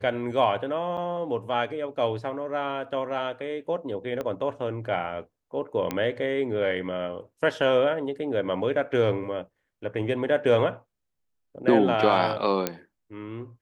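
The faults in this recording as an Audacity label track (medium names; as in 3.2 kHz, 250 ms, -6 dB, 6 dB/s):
0.970000	0.980000	dropout 7.1 ms
4.210000	4.210000	pop -19 dBFS
5.910000	5.910000	pop -13 dBFS
12.670000	12.670000	pop -9 dBFS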